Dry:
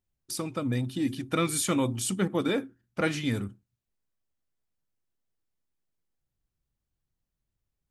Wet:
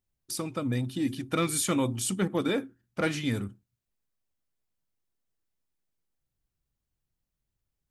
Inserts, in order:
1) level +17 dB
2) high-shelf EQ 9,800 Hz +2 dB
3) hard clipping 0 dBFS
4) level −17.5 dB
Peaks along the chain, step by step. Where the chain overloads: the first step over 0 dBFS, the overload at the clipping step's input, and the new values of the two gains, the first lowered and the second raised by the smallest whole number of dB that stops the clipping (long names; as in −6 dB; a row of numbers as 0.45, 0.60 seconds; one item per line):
+4.0, +4.0, 0.0, −17.5 dBFS
step 1, 4.0 dB
step 1 +13 dB, step 4 −13.5 dB